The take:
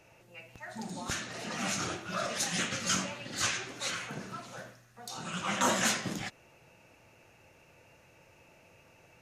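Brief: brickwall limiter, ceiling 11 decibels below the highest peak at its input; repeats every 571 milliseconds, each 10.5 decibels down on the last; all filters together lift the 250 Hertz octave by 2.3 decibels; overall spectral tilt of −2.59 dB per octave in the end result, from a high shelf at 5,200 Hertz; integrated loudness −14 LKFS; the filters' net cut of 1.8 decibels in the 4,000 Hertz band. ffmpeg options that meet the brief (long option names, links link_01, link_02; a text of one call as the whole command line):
ffmpeg -i in.wav -af "equalizer=frequency=250:width_type=o:gain=3,equalizer=frequency=4000:width_type=o:gain=-6,highshelf=frequency=5200:gain=7.5,alimiter=level_in=1.5dB:limit=-24dB:level=0:latency=1,volume=-1.5dB,aecho=1:1:571|1142|1713:0.299|0.0896|0.0269,volume=22.5dB" out.wav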